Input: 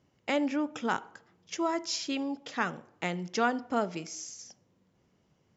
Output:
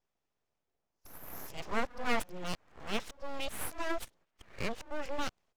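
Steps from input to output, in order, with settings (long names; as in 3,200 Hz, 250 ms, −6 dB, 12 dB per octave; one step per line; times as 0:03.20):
played backwards from end to start
high-pass filter 180 Hz 24 dB per octave
noise gate −58 dBFS, range −14 dB
speech leveller within 4 dB 2 s
full-wave rectification
level −2.5 dB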